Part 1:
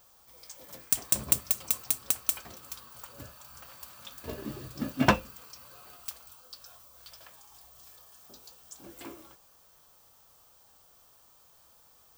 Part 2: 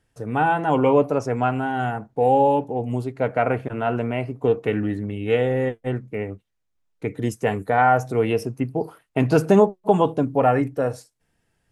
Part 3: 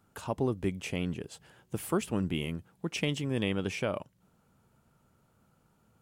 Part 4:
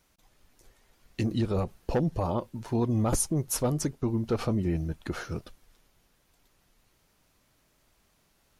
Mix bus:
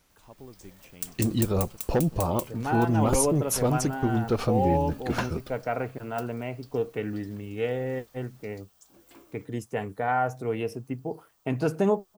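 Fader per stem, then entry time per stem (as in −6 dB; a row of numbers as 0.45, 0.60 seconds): −8.5, −8.5, −17.0, +2.5 decibels; 0.10, 2.30, 0.00, 0.00 seconds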